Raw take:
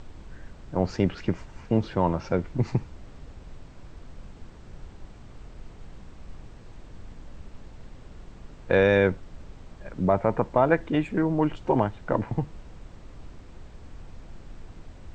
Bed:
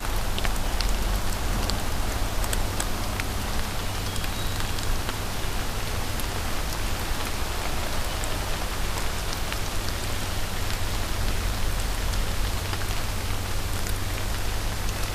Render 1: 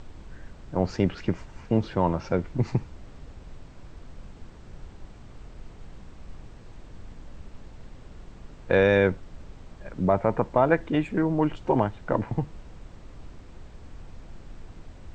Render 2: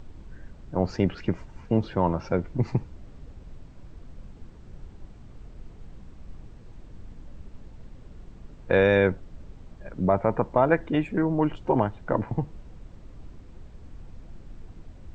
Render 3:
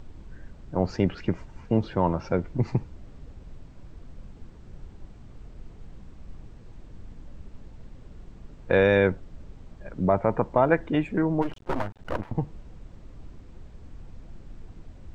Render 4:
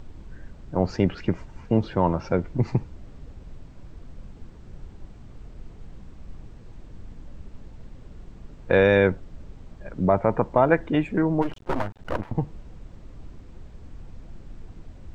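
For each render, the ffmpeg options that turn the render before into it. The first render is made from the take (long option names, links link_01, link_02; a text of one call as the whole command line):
ffmpeg -i in.wav -af anull out.wav
ffmpeg -i in.wav -af "afftdn=noise_reduction=6:noise_floor=-47" out.wav
ffmpeg -i in.wav -filter_complex "[0:a]asplit=3[link_01][link_02][link_03];[link_01]afade=type=out:start_time=11.41:duration=0.02[link_04];[link_02]aeval=exprs='max(val(0),0)':channel_layout=same,afade=type=in:start_time=11.41:duration=0.02,afade=type=out:start_time=12.33:duration=0.02[link_05];[link_03]afade=type=in:start_time=12.33:duration=0.02[link_06];[link_04][link_05][link_06]amix=inputs=3:normalize=0" out.wav
ffmpeg -i in.wav -af "volume=2dB" out.wav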